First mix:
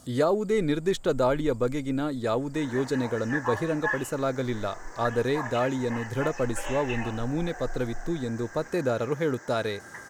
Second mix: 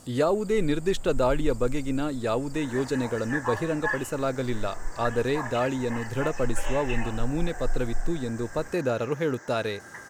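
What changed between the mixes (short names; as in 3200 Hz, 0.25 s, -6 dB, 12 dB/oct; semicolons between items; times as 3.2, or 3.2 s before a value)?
speech: remove notch 2700 Hz, Q 7.2; first sound +10.0 dB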